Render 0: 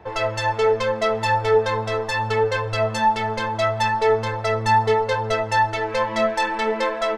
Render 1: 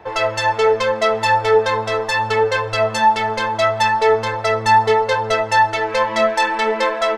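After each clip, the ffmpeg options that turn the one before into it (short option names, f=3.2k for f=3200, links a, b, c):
-af "lowshelf=f=250:g=-9,volume=5.5dB"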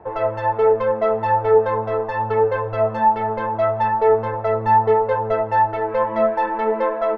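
-af "lowpass=1k"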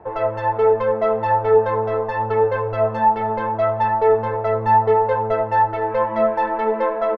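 -filter_complex "[0:a]asplit=2[a][b];[b]adelay=291.5,volume=-15dB,highshelf=f=4k:g=-6.56[c];[a][c]amix=inputs=2:normalize=0"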